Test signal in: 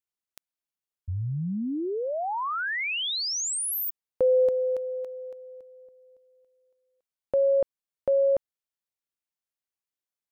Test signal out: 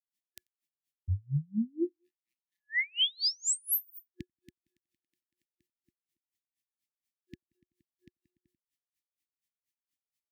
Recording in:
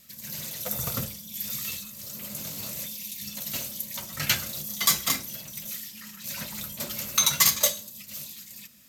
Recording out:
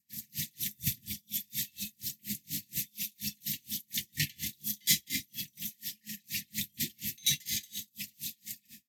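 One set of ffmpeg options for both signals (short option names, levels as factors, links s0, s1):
-filter_complex "[0:a]highpass=60,aecho=1:1:90|180:0.0841|0.0278,adynamicequalizer=threshold=0.00562:dfrequency=3400:dqfactor=3.1:tfrequency=3400:tqfactor=3.1:attack=5:release=100:ratio=0.375:range=2:mode=boostabove:tftype=bell,asplit=2[s0][s1];[s1]acompressor=threshold=0.0251:ratio=6:attack=0.31:release=435:knee=1:detection=peak,volume=1.06[s2];[s0][s2]amix=inputs=2:normalize=0,afftfilt=real='re*(1-between(b*sr/4096,360,1700))':imag='im*(1-between(b*sr/4096,360,1700))':win_size=4096:overlap=0.75,aeval=exprs='val(0)*pow(10,-37*(0.5-0.5*cos(2*PI*4.2*n/s))/20)':c=same"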